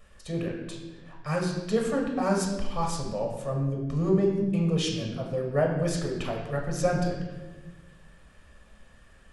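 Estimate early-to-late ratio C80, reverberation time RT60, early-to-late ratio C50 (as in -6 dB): 6.0 dB, 1.3 s, 4.0 dB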